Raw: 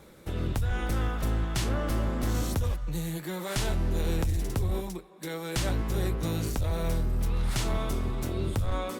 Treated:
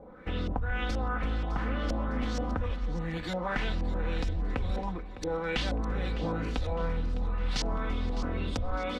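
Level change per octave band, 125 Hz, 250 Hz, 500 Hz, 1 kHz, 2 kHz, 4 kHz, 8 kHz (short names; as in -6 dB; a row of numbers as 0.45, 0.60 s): -5.0, -1.5, -1.0, +1.5, +2.0, -1.0, -10.5 dB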